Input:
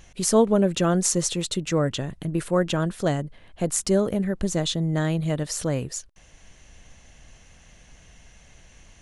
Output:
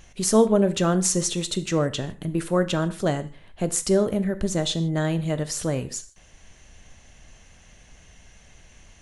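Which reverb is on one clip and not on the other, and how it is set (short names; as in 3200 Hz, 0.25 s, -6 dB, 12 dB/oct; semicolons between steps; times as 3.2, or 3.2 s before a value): non-linear reverb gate 0.18 s falling, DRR 11 dB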